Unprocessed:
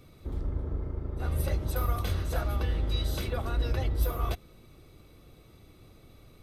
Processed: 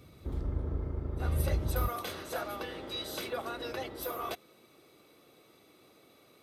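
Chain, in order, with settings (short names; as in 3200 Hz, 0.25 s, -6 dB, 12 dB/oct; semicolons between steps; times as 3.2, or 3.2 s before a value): HPF 44 Hz 12 dB/oct, from 1.88 s 320 Hz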